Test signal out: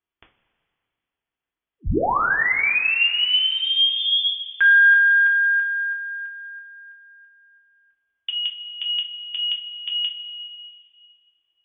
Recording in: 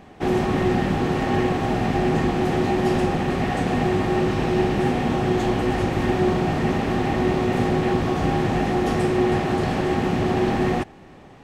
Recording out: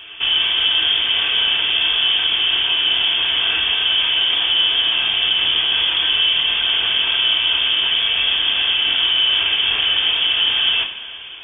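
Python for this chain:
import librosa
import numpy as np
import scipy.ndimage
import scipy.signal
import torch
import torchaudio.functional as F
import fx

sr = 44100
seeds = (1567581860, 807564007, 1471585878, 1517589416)

p1 = fx.freq_invert(x, sr, carrier_hz=3400)
p2 = fx.over_compress(p1, sr, threshold_db=-28.0, ratio=-1.0)
p3 = p1 + (p2 * librosa.db_to_amplitude(-1.5))
p4 = fx.notch(p3, sr, hz=610.0, q=12.0)
p5 = fx.rev_double_slope(p4, sr, seeds[0], early_s=0.28, late_s=2.5, knee_db=-16, drr_db=0.5)
y = p5 * librosa.db_to_amplitude(-2.0)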